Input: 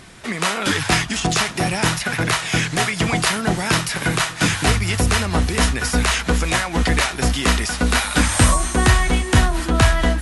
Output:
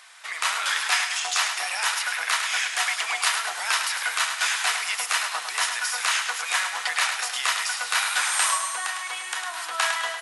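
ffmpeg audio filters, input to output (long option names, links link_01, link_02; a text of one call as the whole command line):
ffmpeg -i in.wav -filter_complex "[0:a]highpass=frequency=870:width=0.5412,highpass=frequency=870:width=1.3066,asplit=3[link_01][link_02][link_03];[link_01]afade=type=out:start_time=8.57:duration=0.02[link_04];[link_02]acompressor=threshold=-24dB:ratio=6,afade=type=in:start_time=8.57:duration=0.02,afade=type=out:start_time=9.46:duration=0.02[link_05];[link_03]afade=type=in:start_time=9.46:duration=0.02[link_06];[link_04][link_05][link_06]amix=inputs=3:normalize=0,aecho=1:1:105|210|315|420|525:0.447|0.205|0.0945|0.0435|0.02,volume=-3.5dB" out.wav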